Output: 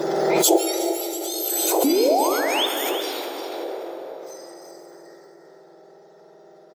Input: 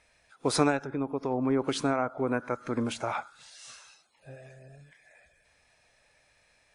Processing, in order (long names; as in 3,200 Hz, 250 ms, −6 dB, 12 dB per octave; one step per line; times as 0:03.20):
frequency axis turned over on the octave scale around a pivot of 1,800 Hz
high-shelf EQ 2,600 Hz −9.5 dB
in parallel at +3 dB: downward compressor, threshold −48 dBFS, peak gain reduction 24.5 dB
on the sum: sound drawn into the spectrogram rise, 0:01.84–0:02.66, 260–3,700 Hz −27 dBFS
flat-topped bell 1,700 Hz −11 dB
on a send: single-tap delay 354 ms −10 dB
on the sum: dense smooth reverb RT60 4.7 s, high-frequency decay 0.5×, pre-delay 0 ms, DRR 2 dB
background raised ahead of every attack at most 20 dB per second
level +7.5 dB